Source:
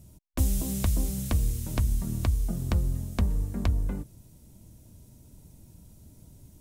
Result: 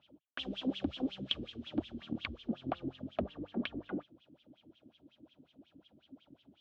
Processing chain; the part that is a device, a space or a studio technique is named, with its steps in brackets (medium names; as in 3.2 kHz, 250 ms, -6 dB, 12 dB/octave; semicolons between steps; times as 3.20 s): wah-wah guitar rig (wah-wah 5.5 Hz 260–3300 Hz, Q 6.3; valve stage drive 35 dB, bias 0.4; cabinet simulation 93–4000 Hz, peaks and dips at 110 Hz -7 dB, 180 Hz -7 dB, 430 Hz -8 dB, 960 Hz -9 dB, 2 kHz -9 dB, 3.2 kHz +8 dB); trim +15 dB